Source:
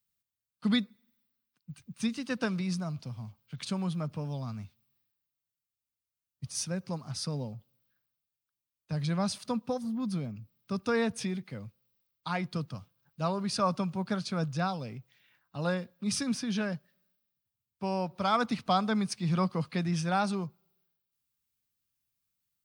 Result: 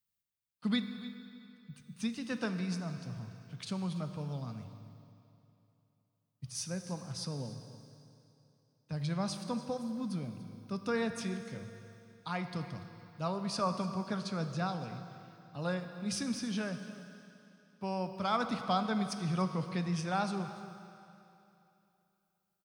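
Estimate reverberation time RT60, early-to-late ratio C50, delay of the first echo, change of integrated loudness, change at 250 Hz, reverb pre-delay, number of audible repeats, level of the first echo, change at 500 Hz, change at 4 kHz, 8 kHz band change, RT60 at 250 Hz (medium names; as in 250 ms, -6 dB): 2.9 s, 8.0 dB, 289 ms, -4.5 dB, -4.0 dB, 17 ms, 1, -17.5 dB, -4.0 dB, -4.0 dB, -4.5 dB, 2.9 s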